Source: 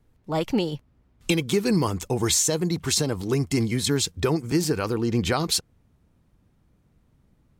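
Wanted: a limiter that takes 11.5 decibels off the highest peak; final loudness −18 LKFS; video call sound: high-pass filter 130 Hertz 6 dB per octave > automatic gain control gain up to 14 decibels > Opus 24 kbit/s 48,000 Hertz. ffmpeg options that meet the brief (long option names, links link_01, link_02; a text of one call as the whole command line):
ffmpeg -i in.wav -af "alimiter=limit=-20.5dB:level=0:latency=1,highpass=frequency=130:poles=1,dynaudnorm=maxgain=14dB,volume=13dB" -ar 48000 -c:a libopus -b:a 24k out.opus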